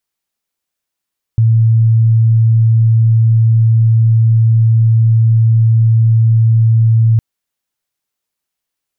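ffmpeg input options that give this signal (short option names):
-f lavfi -i "sine=f=113:d=5.81:r=44100,volume=12.06dB"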